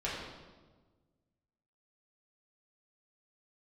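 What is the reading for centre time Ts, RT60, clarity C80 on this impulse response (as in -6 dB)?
74 ms, 1.4 s, 3.0 dB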